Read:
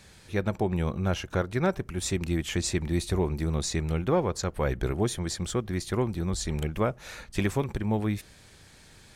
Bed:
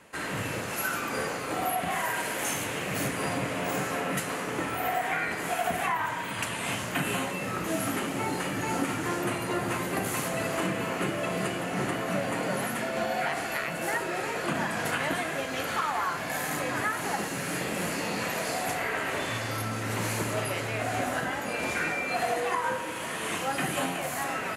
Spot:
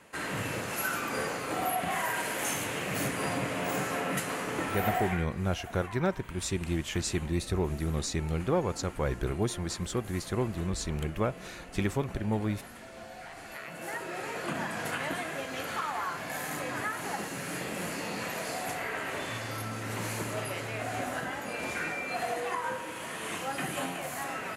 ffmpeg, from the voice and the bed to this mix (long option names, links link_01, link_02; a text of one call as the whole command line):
ffmpeg -i stem1.wav -i stem2.wav -filter_complex "[0:a]adelay=4400,volume=-3dB[link_01];[1:a]volume=10.5dB,afade=type=out:start_time=4.97:duration=0.3:silence=0.177828,afade=type=in:start_time=13.28:duration=1.09:silence=0.251189[link_02];[link_01][link_02]amix=inputs=2:normalize=0" out.wav